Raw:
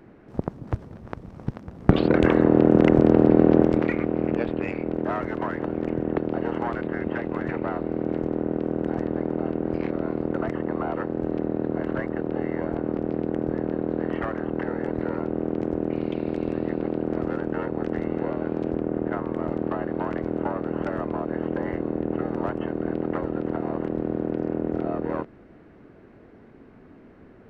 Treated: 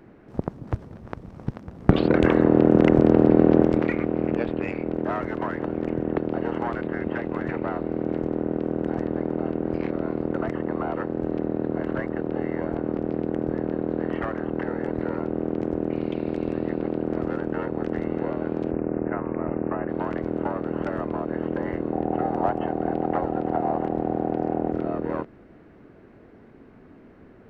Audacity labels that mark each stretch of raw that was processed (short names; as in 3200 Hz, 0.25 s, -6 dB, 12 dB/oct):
18.710000	19.890000	careless resampling rate divided by 8×, down none, up filtered
21.920000	24.720000	bell 760 Hz +14.5 dB 0.39 oct